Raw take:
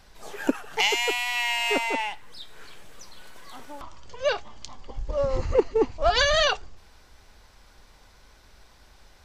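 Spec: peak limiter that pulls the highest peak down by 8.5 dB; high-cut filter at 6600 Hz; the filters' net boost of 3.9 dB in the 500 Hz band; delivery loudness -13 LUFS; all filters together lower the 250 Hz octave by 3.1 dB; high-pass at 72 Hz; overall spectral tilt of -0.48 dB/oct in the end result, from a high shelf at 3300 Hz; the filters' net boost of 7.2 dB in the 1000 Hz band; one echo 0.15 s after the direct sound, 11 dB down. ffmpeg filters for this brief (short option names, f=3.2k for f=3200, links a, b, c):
-af "highpass=72,lowpass=6.6k,equalizer=f=250:t=o:g=-6.5,equalizer=f=500:t=o:g=3.5,equalizer=f=1k:t=o:g=9,highshelf=f=3.3k:g=-6.5,alimiter=limit=-13dB:level=0:latency=1,aecho=1:1:150:0.282,volume=11dB"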